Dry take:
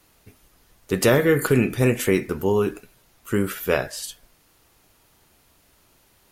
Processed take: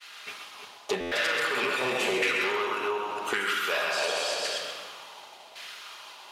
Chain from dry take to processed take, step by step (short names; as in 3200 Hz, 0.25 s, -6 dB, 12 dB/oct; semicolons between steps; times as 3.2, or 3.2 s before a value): reverse delay 0.229 s, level -5 dB; thinning echo 0.131 s, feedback 34%, high-pass 950 Hz, level -5 dB; overdrive pedal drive 25 dB, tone 6900 Hz, clips at -2 dBFS; LFO band-pass saw down 0.9 Hz 690–1600 Hz; shoebox room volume 1800 m³, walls mixed, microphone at 1.3 m; compressor 4:1, threshold -32 dBFS, peak gain reduction 18.5 dB; resonant high shelf 2300 Hz +11 dB, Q 1.5; expander -44 dBFS; stuck buffer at 1, samples 512, times 9; gain +4.5 dB